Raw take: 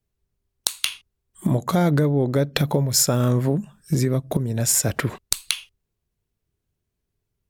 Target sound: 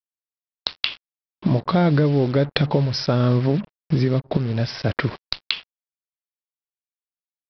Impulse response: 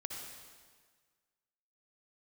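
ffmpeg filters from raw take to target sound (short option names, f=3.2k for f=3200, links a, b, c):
-af "acompressor=mode=upward:threshold=-34dB:ratio=2.5,aresample=11025,acrusher=bits=5:mix=0:aa=0.5,aresample=44100,volume=1.5dB"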